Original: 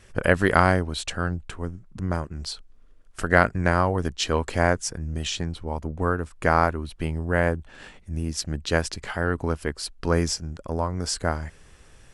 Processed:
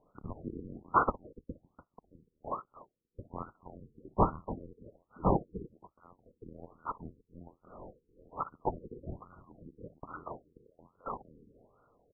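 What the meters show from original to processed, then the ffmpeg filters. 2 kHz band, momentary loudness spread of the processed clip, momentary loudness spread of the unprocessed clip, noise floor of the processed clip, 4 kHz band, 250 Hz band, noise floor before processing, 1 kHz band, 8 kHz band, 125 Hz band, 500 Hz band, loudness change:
-23.5 dB, 24 LU, 14 LU, -81 dBFS, under -40 dB, -13.0 dB, -51 dBFS, -9.0 dB, under -40 dB, -16.0 dB, -14.5 dB, -11.0 dB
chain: -filter_complex "[0:a]afftfilt=real='real(if(lt(b,272),68*(eq(floor(b/68),0)*2+eq(floor(b/68),1)*3+eq(floor(b/68),2)*0+eq(floor(b/68),3)*1)+mod(b,68),b),0)':imag='imag(if(lt(b,272),68*(eq(floor(b/68),0)*2+eq(floor(b/68),1)*3+eq(floor(b/68),2)*0+eq(floor(b/68),3)*1)+mod(b,68),b),0)':win_size=2048:overlap=0.75,lowpass=f=1.9k:t=q:w=1.7,aecho=1:1:59|292:0.126|0.141,agate=range=-8dB:threshold=-49dB:ratio=16:detection=peak,aresample=11025,aeval=exprs='0.376*sin(PI/2*1.78*val(0)/0.376)':c=same,aresample=44100,aemphasis=mode=production:type=50kf,asplit=2[a][b];[b]volume=14.5dB,asoftclip=hard,volume=-14.5dB,volume=-7.5dB[c];[a][c]amix=inputs=2:normalize=0,afftfilt=real='re*lt(b*sr/1024,480*pow(1500/480,0.5+0.5*sin(2*PI*1.2*pts/sr)))':imag='im*lt(b*sr/1024,480*pow(1500/480,0.5+0.5*sin(2*PI*1.2*pts/sr)))':win_size=1024:overlap=0.75,volume=-4.5dB"

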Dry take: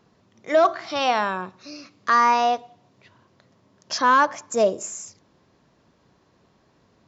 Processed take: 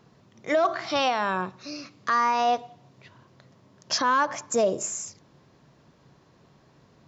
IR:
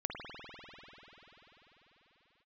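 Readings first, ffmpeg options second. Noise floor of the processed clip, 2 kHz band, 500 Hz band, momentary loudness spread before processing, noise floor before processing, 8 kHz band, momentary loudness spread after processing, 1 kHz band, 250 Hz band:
-60 dBFS, -4.0 dB, -3.5 dB, 16 LU, -63 dBFS, n/a, 13 LU, -4.5 dB, -2.0 dB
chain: -af "equalizer=f=140:t=o:w=0.26:g=9,alimiter=limit=-16.5dB:level=0:latency=1:release=73,volume=2dB"

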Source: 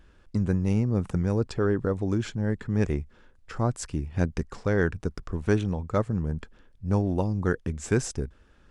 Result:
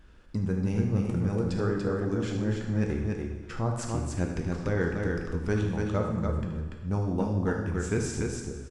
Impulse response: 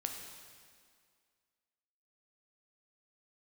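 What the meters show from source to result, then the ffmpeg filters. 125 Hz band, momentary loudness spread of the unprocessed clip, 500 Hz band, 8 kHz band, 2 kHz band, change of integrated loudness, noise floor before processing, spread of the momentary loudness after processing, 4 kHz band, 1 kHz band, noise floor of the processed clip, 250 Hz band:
-1.5 dB, 8 LU, -2.0 dB, -1.0 dB, -1.5 dB, -2.0 dB, -58 dBFS, 5 LU, -1.0 dB, -1.5 dB, -43 dBFS, -1.5 dB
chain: -filter_complex "[0:a]aecho=1:1:75.8|288.6:0.282|0.631[a];[1:a]atrim=start_sample=2205,asetrate=79380,aresample=44100[b];[a][b]afir=irnorm=-1:irlink=0,asplit=2[c][d];[d]acompressor=threshold=-42dB:ratio=6,volume=0.5dB[e];[c][e]amix=inputs=2:normalize=0"

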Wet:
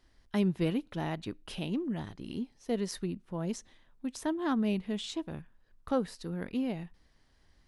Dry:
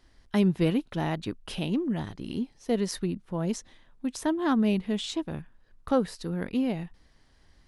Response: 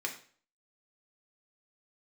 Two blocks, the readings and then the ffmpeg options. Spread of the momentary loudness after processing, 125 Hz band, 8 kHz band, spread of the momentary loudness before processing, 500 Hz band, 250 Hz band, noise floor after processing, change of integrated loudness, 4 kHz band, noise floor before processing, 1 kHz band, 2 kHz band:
11 LU, -5.5 dB, -5.0 dB, 11 LU, -5.0 dB, -5.5 dB, -66 dBFS, -5.5 dB, -5.0 dB, -61 dBFS, -5.0 dB, -5.0 dB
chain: -filter_complex "[0:a]asplit=2[a][b];[1:a]atrim=start_sample=2205,asetrate=52920,aresample=44100[c];[b][c]afir=irnorm=-1:irlink=0,volume=-24dB[d];[a][d]amix=inputs=2:normalize=0,volume=-5.5dB"

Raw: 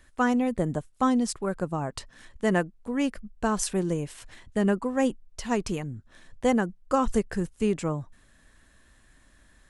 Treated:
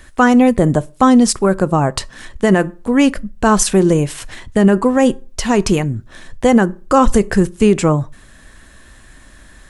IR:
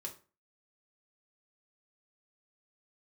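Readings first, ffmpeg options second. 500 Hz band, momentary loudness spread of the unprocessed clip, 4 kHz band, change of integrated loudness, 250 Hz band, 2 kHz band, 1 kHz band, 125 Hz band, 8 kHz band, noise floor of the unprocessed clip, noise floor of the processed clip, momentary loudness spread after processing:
+13.5 dB, 11 LU, +14.0 dB, +13.5 dB, +13.5 dB, +12.5 dB, +13.0 dB, +14.5 dB, +14.5 dB, -60 dBFS, -44 dBFS, 9 LU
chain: -filter_complex "[0:a]asplit=2[a][b];[1:a]atrim=start_sample=2205[c];[b][c]afir=irnorm=-1:irlink=0,volume=-11.5dB[d];[a][d]amix=inputs=2:normalize=0,alimiter=level_in=15.5dB:limit=-1dB:release=50:level=0:latency=1,volume=-1dB"

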